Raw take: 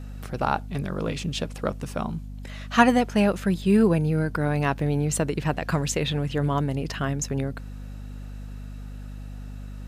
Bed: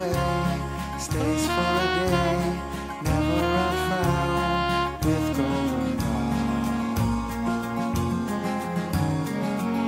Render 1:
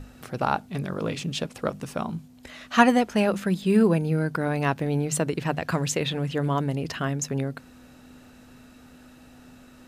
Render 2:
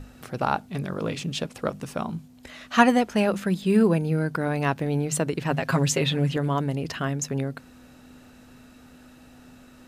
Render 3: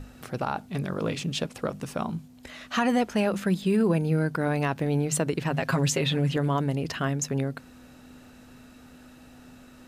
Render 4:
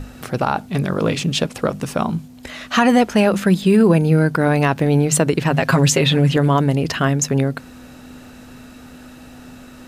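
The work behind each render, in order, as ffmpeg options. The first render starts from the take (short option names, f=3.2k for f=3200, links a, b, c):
-af "bandreject=f=50:t=h:w=6,bandreject=f=100:t=h:w=6,bandreject=f=150:t=h:w=6,bandreject=f=200:t=h:w=6"
-filter_complex "[0:a]asettb=1/sr,asplit=3[a][b][c];[a]atrim=end=5.504[d];[b]atrim=start=5.5:end=6.37,asetpts=PTS-STARTPTS,afade=t=in:d=0.004:c=qsin,afade=t=out:st=0.866:d=0.004:c=qsin,aecho=1:1:7.4:0.88,atrim=end_sample=38367[e];[c]atrim=start=6.366[f];[d][e]acrossfade=d=0.004:c1=hsin:c2=qsin[g];[g][f]acrossfade=d=0.004:c1=qsin:c2=hsin"
-af "alimiter=limit=-15.5dB:level=0:latency=1:release=42"
-af "volume=10dB"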